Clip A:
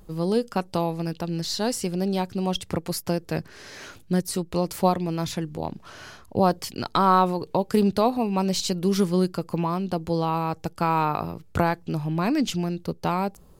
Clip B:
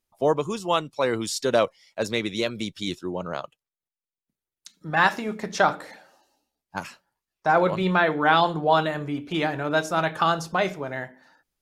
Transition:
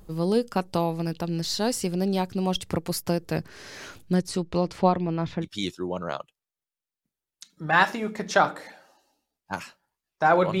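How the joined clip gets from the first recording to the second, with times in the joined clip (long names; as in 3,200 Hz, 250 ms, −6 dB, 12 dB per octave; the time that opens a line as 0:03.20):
clip A
0:04.14–0:05.47: low-pass filter 8,400 Hz → 1,800 Hz
0:05.44: continue with clip B from 0:02.68, crossfade 0.06 s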